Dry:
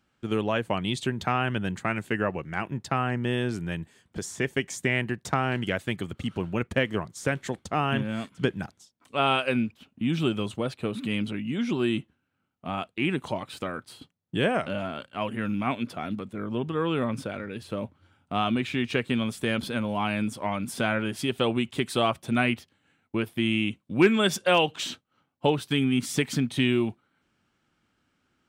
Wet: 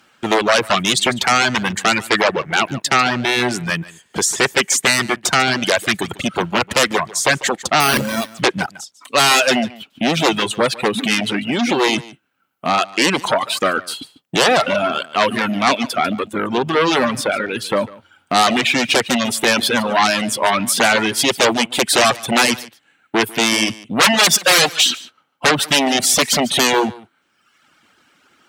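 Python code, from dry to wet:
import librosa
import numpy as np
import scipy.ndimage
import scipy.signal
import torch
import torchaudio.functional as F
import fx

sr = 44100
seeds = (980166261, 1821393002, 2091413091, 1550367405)

y = fx.fold_sine(x, sr, drive_db=14, ceiling_db=-9.5)
y = fx.highpass(y, sr, hz=610.0, slope=6)
y = fx.resample_bad(y, sr, factor=6, down='none', up='hold', at=(7.8, 8.33))
y = y + 10.0 ** (-10.5 / 20.0) * np.pad(y, (int(146 * sr / 1000.0), 0))[:len(y)]
y = fx.dereverb_blind(y, sr, rt60_s=0.93)
y = F.gain(torch.from_numpy(y), 3.5).numpy()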